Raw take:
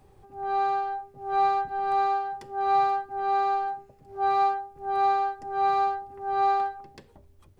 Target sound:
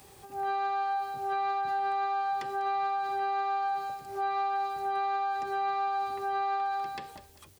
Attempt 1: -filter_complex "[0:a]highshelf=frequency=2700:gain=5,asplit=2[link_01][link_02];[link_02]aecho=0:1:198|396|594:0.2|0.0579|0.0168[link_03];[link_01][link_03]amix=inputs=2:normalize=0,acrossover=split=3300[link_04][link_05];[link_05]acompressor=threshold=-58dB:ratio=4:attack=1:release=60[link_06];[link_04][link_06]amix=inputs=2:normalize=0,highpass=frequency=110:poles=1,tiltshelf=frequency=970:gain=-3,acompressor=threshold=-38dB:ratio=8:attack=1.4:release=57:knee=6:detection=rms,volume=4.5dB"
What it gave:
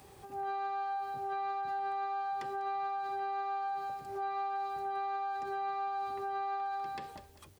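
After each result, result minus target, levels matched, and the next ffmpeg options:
downward compressor: peak gain reduction +5 dB; 4,000 Hz band −2.5 dB
-filter_complex "[0:a]highshelf=frequency=2700:gain=5,asplit=2[link_01][link_02];[link_02]aecho=0:1:198|396|594:0.2|0.0579|0.0168[link_03];[link_01][link_03]amix=inputs=2:normalize=0,acrossover=split=3300[link_04][link_05];[link_05]acompressor=threshold=-58dB:ratio=4:attack=1:release=60[link_06];[link_04][link_06]amix=inputs=2:normalize=0,highpass=frequency=110:poles=1,tiltshelf=frequency=970:gain=-3,acompressor=threshold=-31.5dB:ratio=8:attack=1.4:release=57:knee=6:detection=rms,volume=4.5dB"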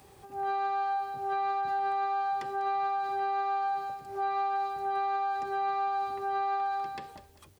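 4,000 Hz band −3.0 dB
-filter_complex "[0:a]highshelf=frequency=2700:gain=12.5,asplit=2[link_01][link_02];[link_02]aecho=0:1:198|396|594:0.2|0.0579|0.0168[link_03];[link_01][link_03]amix=inputs=2:normalize=0,acrossover=split=3300[link_04][link_05];[link_05]acompressor=threshold=-58dB:ratio=4:attack=1:release=60[link_06];[link_04][link_06]amix=inputs=2:normalize=0,highpass=frequency=110:poles=1,tiltshelf=frequency=970:gain=-3,acompressor=threshold=-31.5dB:ratio=8:attack=1.4:release=57:knee=6:detection=rms,volume=4.5dB"

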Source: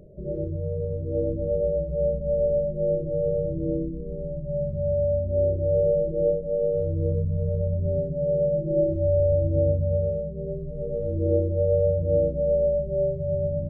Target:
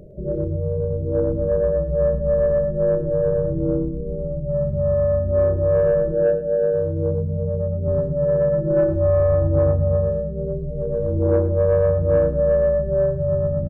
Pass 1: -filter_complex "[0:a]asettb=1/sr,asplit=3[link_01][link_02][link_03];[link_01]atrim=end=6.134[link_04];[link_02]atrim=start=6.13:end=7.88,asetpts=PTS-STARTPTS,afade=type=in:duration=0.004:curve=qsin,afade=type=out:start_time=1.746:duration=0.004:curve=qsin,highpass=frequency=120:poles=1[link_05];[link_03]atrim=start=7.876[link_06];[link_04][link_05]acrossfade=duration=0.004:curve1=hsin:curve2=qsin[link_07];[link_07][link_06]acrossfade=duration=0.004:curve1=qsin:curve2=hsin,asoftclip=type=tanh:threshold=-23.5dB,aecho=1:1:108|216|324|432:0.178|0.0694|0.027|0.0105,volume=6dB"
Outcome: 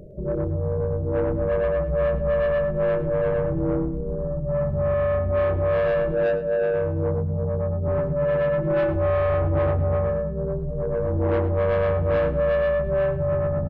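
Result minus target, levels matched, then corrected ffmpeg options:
soft clipping: distortion +11 dB
-filter_complex "[0:a]asettb=1/sr,asplit=3[link_01][link_02][link_03];[link_01]atrim=end=6.134[link_04];[link_02]atrim=start=6.13:end=7.88,asetpts=PTS-STARTPTS,afade=type=in:duration=0.004:curve=qsin,afade=type=out:start_time=1.746:duration=0.004:curve=qsin,highpass=frequency=120:poles=1[link_05];[link_03]atrim=start=7.876[link_06];[link_04][link_05]acrossfade=duration=0.004:curve1=hsin:curve2=qsin[link_07];[link_07][link_06]acrossfade=duration=0.004:curve1=qsin:curve2=hsin,asoftclip=type=tanh:threshold=-14.5dB,aecho=1:1:108|216|324|432:0.178|0.0694|0.027|0.0105,volume=6dB"

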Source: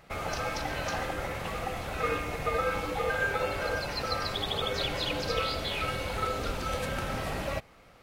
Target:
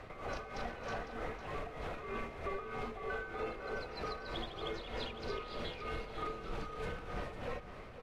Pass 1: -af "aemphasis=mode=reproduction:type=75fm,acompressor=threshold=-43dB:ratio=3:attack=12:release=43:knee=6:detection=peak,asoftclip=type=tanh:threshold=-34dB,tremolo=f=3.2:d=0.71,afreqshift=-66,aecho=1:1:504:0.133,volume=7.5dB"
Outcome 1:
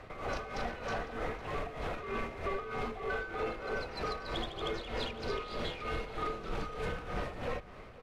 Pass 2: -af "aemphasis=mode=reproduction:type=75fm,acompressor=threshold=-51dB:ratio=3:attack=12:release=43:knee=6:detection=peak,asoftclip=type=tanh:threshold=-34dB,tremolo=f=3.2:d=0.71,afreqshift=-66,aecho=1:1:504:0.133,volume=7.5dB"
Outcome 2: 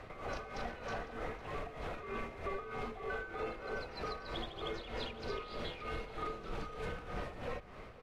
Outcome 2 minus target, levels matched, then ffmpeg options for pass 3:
echo-to-direct −6.5 dB
-af "aemphasis=mode=reproduction:type=75fm,acompressor=threshold=-51dB:ratio=3:attack=12:release=43:knee=6:detection=peak,asoftclip=type=tanh:threshold=-34dB,tremolo=f=3.2:d=0.71,afreqshift=-66,aecho=1:1:504:0.282,volume=7.5dB"

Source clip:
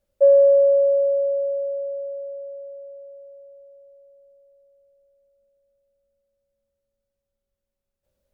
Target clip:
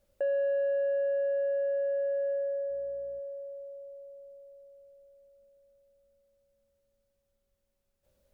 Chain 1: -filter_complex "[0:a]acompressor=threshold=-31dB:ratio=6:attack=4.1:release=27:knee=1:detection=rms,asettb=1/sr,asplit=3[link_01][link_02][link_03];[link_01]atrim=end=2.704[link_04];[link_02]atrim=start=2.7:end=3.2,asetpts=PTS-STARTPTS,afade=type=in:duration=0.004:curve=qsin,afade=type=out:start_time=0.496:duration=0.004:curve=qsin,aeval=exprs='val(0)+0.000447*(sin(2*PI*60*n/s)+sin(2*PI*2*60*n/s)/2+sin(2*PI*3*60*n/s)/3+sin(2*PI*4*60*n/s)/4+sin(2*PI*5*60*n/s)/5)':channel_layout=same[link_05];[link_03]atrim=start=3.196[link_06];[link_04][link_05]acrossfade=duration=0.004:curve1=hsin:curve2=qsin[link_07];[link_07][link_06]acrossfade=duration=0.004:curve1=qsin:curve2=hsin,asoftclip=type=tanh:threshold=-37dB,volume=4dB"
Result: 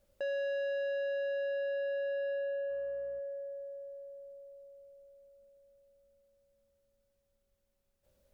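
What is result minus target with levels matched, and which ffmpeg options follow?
soft clipping: distortion +11 dB
-filter_complex "[0:a]acompressor=threshold=-31dB:ratio=6:attack=4.1:release=27:knee=1:detection=rms,asettb=1/sr,asplit=3[link_01][link_02][link_03];[link_01]atrim=end=2.704[link_04];[link_02]atrim=start=2.7:end=3.2,asetpts=PTS-STARTPTS,afade=type=in:duration=0.004:curve=qsin,afade=type=out:start_time=0.496:duration=0.004:curve=qsin,aeval=exprs='val(0)+0.000447*(sin(2*PI*60*n/s)+sin(2*PI*2*60*n/s)/2+sin(2*PI*3*60*n/s)/3+sin(2*PI*4*60*n/s)/4+sin(2*PI*5*60*n/s)/5)':channel_layout=same[link_05];[link_03]atrim=start=3.196[link_06];[link_04][link_05]acrossfade=duration=0.004:curve1=hsin:curve2=qsin[link_07];[link_07][link_06]acrossfade=duration=0.004:curve1=qsin:curve2=hsin,asoftclip=type=tanh:threshold=-28dB,volume=4dB"

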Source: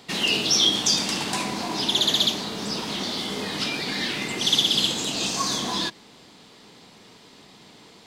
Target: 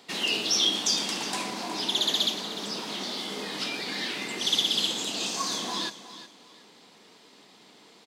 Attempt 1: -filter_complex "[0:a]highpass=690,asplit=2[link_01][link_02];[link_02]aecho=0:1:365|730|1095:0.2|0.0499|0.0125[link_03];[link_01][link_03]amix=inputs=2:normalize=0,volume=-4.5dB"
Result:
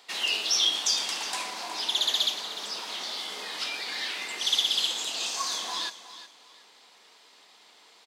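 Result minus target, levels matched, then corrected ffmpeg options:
250 Hz band −14.0 dB
-filter_complex "[0:a]highpass=230,asplit=2[link_01][link_02];[link_02]aecho=0:1:365|730|1095:0.2|0.0499|0.0125[link_03];[link_01][link_03]amix=inputs=2:normalize=0,volume=-4.5dB"

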